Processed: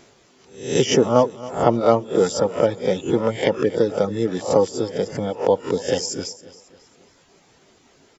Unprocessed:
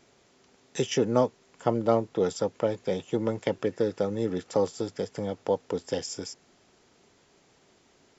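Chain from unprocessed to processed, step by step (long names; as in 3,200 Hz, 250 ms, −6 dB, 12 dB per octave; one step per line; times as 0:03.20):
peak hold with a rise ahead of every peak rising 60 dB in 0.51 s
reverb reduction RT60 1.1 s
on a send: repeating echo 273 ms, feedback 43%, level −18 dB
on the sum: level +8 dB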